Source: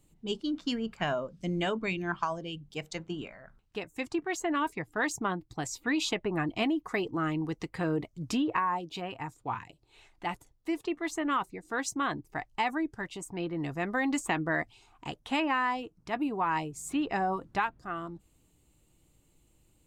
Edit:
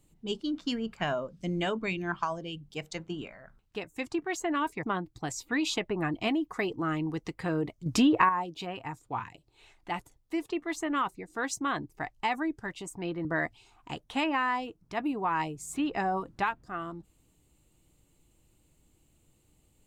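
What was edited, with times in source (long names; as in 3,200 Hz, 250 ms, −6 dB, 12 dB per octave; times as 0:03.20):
0:04.83–0:05.18: remove
0:08.21–0:08.64: clip gain +6.5 dB
0:13.60–0:14.41: remove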